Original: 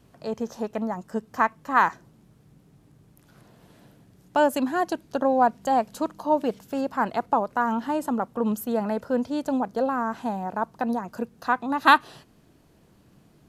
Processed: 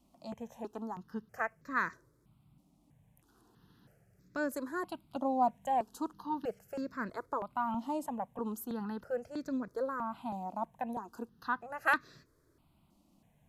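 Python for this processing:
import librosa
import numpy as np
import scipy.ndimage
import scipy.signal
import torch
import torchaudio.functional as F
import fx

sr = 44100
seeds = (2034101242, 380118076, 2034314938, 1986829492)

y = fx.phaser_held(x, sr, hz=3.1, low_hz=440.0, high_hz=3000.0)
y = F.gain(torch.from_numpy(y), -8.0).numpy()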